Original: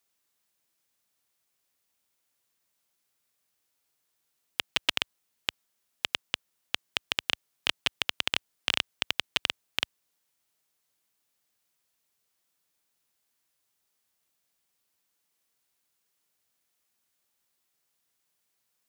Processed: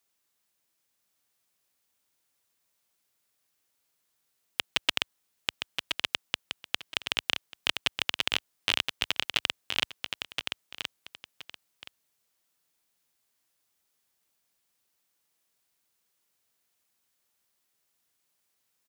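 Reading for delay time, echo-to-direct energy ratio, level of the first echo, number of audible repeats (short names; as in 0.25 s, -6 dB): 1.022 s, -6.0 dB, -6.0 dB, 2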